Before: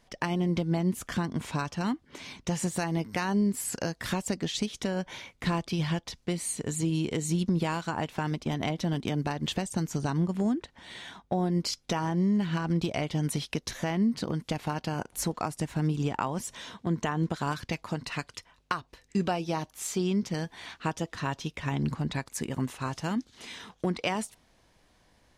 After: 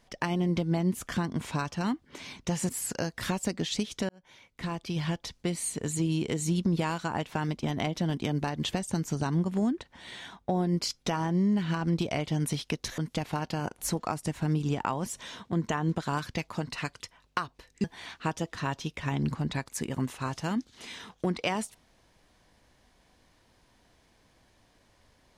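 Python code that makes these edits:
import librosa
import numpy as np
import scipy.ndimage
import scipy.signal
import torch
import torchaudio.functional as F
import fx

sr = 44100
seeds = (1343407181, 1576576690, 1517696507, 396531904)

y = fx.edit(x, sr, fx.cut(start_s=2.69, length_s=0.83),
    fx.fade_in_span(start_s=4.92, length_s=1.15),
    fx.cut(start_s=13.81, length_s=0.51),
    fx.cut(start_s=19.18, length_s=1.26), tone=tone)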